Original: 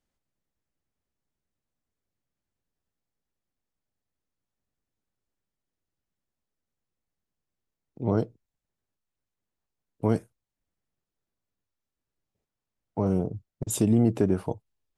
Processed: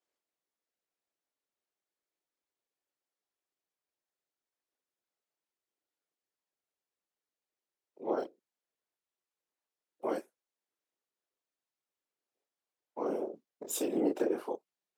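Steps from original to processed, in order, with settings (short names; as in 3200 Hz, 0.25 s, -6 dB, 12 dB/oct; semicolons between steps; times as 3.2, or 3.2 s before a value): chorus voices 2, 0.42 Hz, delay 26 ms, depth 4.2 ms; whisperiser; HPF 340 Hz 24 dB/oct; decimation joined by straight lines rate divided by 2×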